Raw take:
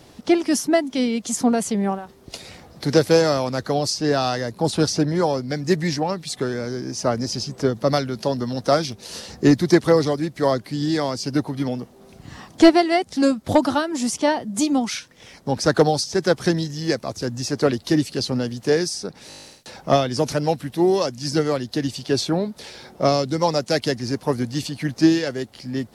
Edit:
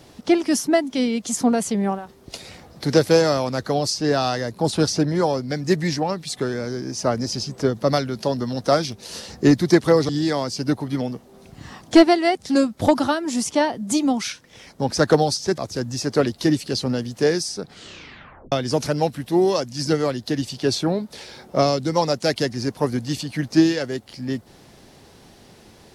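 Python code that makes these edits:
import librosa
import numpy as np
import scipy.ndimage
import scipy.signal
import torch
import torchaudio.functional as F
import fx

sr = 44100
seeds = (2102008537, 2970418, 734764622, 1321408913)

y = fx.edit(x, sr, fx.cut(start_s=10.09, length_s=0.67),
    fx.cut(start_s=16.25, length_s=0.79),
    fx.tape_stop(start_s=19.08, length_s=0.9), tone=tone)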